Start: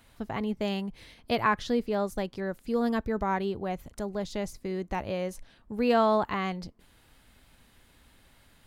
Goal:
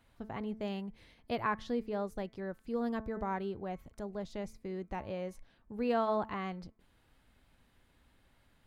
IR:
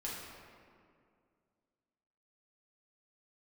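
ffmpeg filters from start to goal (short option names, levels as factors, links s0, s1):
-af "highshelf=f=3300:g=-8,bandreject=f=219.6:t=h:w=4,bandreject=f=439.2:t=h:w=4,bandreject=f=658.8:t=h:w=4,bandreject=f=878.4:t=h:w=4,bandreject=f=1098:t=h:w=4,bandreject=f=1317.6:t=h:w=4,bandreject=f=1537.2:t=h:w=4,bandreject=f=1756.8:t=h:w=4,bandreject=f=1976.4:t=h:w=4,bandreject=f=2196:t=h:w=4,bandreject=f=2415.6:t=h:w=4,volume=0.447"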